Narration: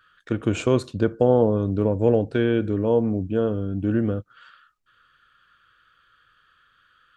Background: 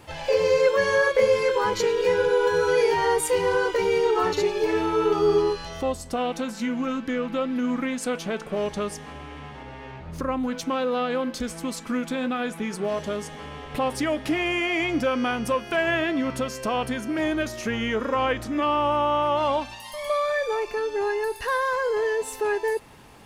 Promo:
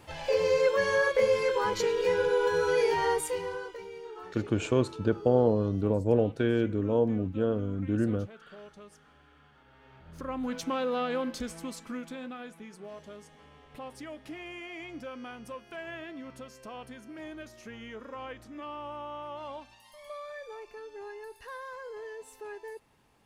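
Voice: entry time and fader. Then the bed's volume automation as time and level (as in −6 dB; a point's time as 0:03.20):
4.05 s, −5.5 dB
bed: 0:03.10 −5 dB
0:03.92 −22 dB
0:09.64 −22 dB
0:10.51 −5 dB
0:11.28 −5 dB
0:12.71 −17.5 dB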